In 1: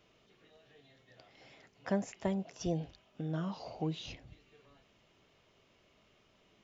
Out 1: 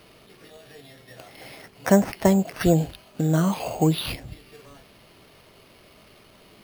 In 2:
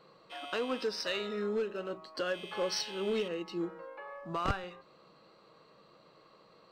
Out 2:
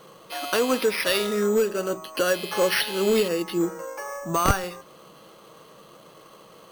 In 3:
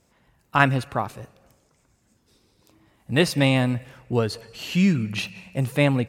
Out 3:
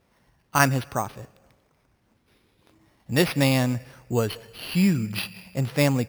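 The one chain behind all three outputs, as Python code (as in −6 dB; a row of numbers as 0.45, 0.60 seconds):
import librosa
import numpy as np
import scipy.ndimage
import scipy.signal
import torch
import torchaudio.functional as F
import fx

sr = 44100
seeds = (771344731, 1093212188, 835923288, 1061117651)

y = np.repeat(x[::6], 6)[:len(x)]
y = y * 10.0 ** (-26 / 20.0) / np.sqrt(np.mean(np.square(y)))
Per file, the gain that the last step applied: +15.5, +11.5, −1.5 decibels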